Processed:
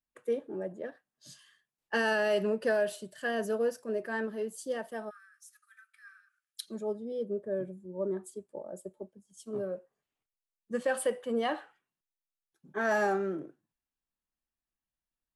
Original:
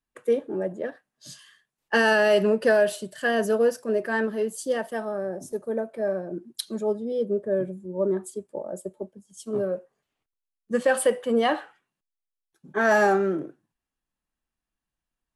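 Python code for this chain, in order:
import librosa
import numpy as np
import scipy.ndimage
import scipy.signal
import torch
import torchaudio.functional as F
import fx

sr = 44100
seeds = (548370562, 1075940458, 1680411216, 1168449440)

y = fx.cheby1_highpass(x, sr, hz=1200.0, order=10, at=(5.09, 6.66), fade=0.02)
y = y * 10.0 ** (-8.5 / 20.0)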